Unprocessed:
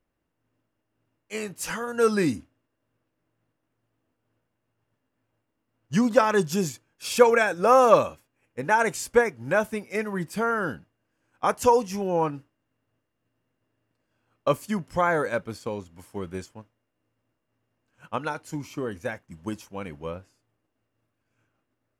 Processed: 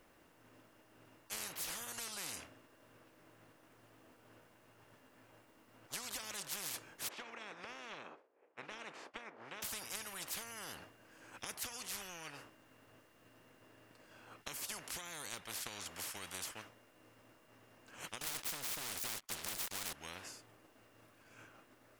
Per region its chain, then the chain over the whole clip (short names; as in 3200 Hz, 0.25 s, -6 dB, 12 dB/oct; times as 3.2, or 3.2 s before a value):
7.07–9.62 spectral contrast lowered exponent 0.59 + ladder band-pass 510 Hz, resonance 50%
18.21–19.93 minimum comb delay 0.88 ms + sample leveller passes 5 + mismatched tape noise reduction decoder only
whole clip: low shelf 230 Hz -11.5 dB; compressor 6:1, threshold -35 dBFS; spectral compressor 10:1; gain +1.5 dB